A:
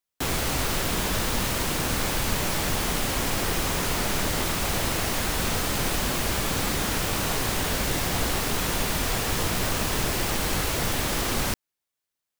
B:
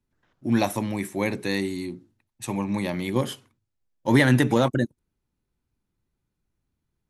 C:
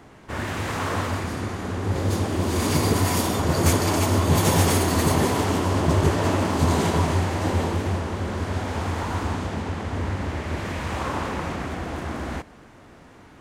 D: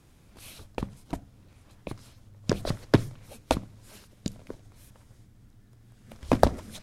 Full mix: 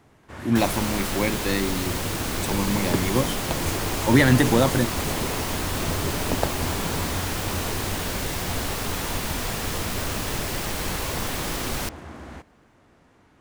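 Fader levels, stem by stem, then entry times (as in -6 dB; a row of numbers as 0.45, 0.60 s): -2.5, +1.0, -9.5, -6.0 dB; 0.35, 0.00, 0.00, 0.00 s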